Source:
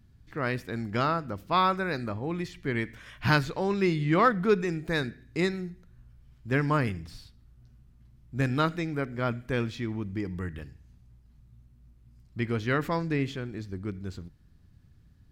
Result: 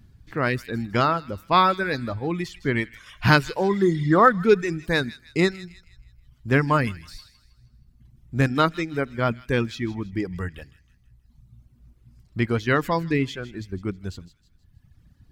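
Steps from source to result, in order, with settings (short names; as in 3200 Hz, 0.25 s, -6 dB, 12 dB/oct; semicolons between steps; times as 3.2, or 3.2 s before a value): spectral repair 3.72–4.26, 1900–6100 Hz after; reverb removal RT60 1.4 s; thin delay 0.159 s, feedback 41%, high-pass 2400 Hz, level -14 dB; gain +7 dB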